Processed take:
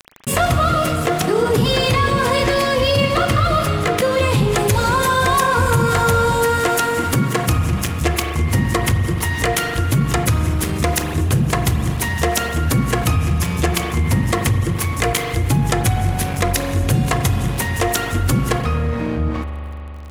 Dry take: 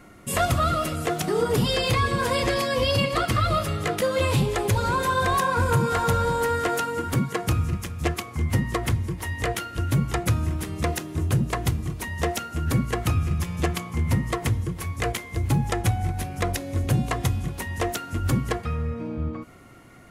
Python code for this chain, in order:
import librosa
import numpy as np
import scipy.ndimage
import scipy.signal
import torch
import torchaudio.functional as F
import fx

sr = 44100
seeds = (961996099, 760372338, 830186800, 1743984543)

y = fx.high_shelf(x, sr, hz=4100.0, db=fx.steps((0.0, -3.0), (4.52, 4.5)))
y = np.sign(y) * np.maximum(np.abs(y) - 10.0 ** (-40.5 / 20.0), 0.0)
y = fx.rev_spring(y, sr, rt60_s=2.2, pass_ms=(41,), chirp_ms=55, drr_db=8.5)
y = fx.env_flatten(y, sr, amount_pct=50)
y = y * 10.0 ** (4.5 / 20.0)